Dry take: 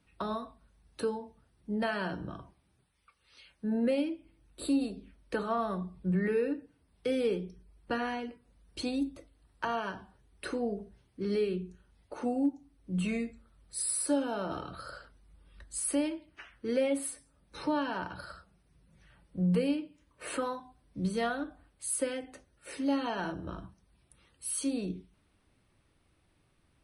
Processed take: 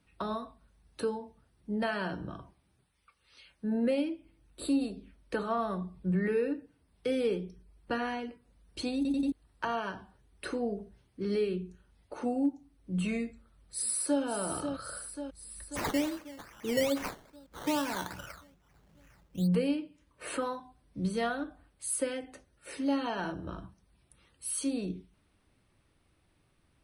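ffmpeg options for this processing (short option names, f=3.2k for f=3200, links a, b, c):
-filter_complex "[0:a]asplit=2[a][b];[b]afade=t=in:st=13.28:d=0.01,afade=t=out:st=14.22:d=0.01,aecho=0:1:540|1080|1620|2160|2700|3240|3780|4320|4860:0.421697|0.274103|0.178167|0.115808|0.0752755|0.048929|0.0318039|0.0206725|0.0134371[c];[a][c]amix=inputs=2:normalize=0,asplit=3[d][e][f];[d]afade=t=out:st=15.75:d=0.02[g];[e]acrusher=samples=14:mix=1:aa=0.000001:lfo=1:lforange=8.4:lforate=2.4,afade=t=in:st=15.75:d=0.02,afade=t=out:st=19.46:d=0.02[h];[f]afade=t=in:st=19.46:d=0.02[i];[g][h][i]amix=inputs=3:normalize=0,asplit=5[j][k][l][m][n];[j]atrim=end=9.052[o];[k]atrim=start=8.958:end=9.052[p];[l]atrim=start=8.958:end=9.052[q];[m]atrim=start=8.958:end=9.052[r];[n]atrim=start=9.318[s];[o][p]acrossfade=d=0.004:c1=hsin:c2=hsin[t];[t][q]acrossfade=d=0.004:c1=hsin:c2=hsin[u];[u][r]acrossfade=d=0.004:c1=hsin:c2=hsin[v];[v][s]acrossfade=d=0.004:c1=hsin:c2=hsin"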